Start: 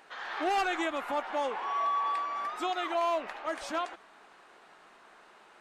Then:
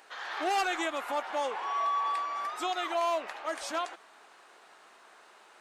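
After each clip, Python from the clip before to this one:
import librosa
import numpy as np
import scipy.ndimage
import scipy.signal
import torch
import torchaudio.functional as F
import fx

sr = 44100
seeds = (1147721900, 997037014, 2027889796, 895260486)

y = fx.bass_treble(x, sr, bass_db=-10, treble_db=6)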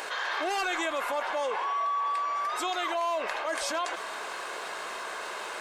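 y = x + 0.35 * np.pad(x, (int(1.9 * sr / 1000.0), 0))[:len(x)]
y = fx.env_flatten(y, sr, amount_pct=70)
y = y * librosa.db_to_amplitude(-2.0)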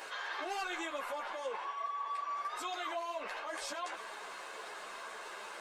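y = fx.ensemble(x, sr)
y = y * librosa.db_to_amplitude(-6.0)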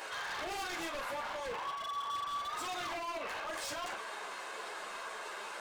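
y = 10.0 ** (-36.5 / 20.0) * (np.abs((x / 10.0 ** (-36.5 / 20.0) + 3.0) % 4.0 - 2.0) - 1.0)
y = fx.doubler(y, sr, ms=42.0, db=-8)
y = y * librosa.db_to_amplitude(2.0)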